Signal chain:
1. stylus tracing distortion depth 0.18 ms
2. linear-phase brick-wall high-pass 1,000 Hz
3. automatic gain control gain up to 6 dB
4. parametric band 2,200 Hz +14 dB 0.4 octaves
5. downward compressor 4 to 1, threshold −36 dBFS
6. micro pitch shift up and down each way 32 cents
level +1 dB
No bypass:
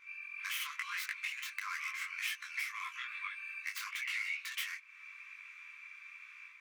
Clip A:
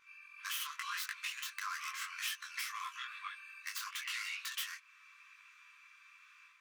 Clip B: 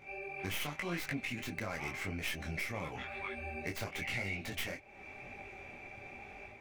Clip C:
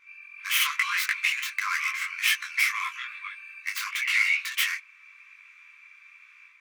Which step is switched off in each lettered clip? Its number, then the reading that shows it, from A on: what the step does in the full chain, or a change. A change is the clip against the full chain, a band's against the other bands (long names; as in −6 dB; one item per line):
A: 4, 2 kHz band −6.5 dB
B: 2, 1 kHz band +4.0 dB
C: 5, average gain reduction 7.0 dB